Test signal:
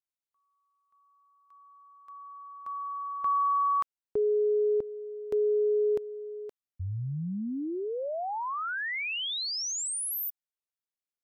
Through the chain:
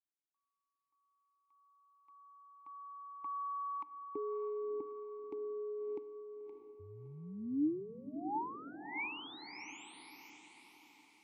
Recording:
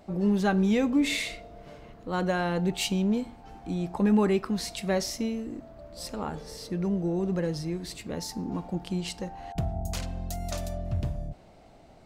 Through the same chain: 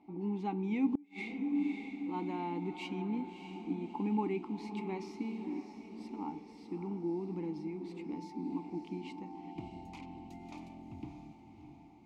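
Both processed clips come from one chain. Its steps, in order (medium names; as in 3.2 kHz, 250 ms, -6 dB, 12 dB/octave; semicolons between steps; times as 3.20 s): vowel filter u; echo that smears into a reverb 624 ms, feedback 48%, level -8.5 dB; inverted gate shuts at -25 dBFS, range -34 dB; trim +3.5 dB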